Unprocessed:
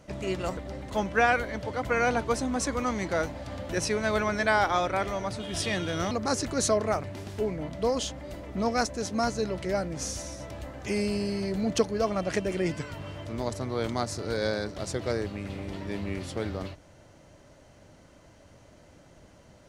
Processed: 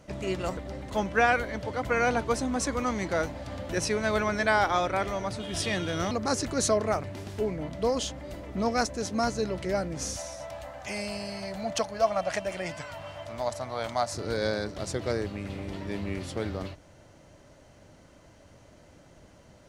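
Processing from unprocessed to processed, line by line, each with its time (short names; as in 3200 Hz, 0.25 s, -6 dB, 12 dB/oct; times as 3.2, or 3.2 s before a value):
10.16–14.14 resonant low shelf 510 Hz -7.5 dB, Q 3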